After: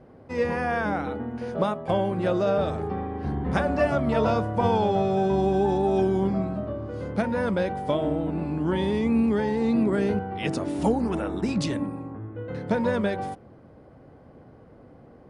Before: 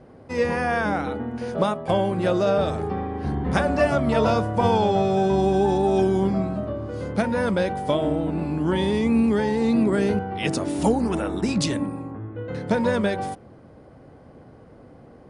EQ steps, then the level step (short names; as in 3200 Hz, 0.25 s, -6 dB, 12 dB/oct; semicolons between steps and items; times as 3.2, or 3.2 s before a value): high shelf 4600 Hz -8.5 dB; -2.5 dB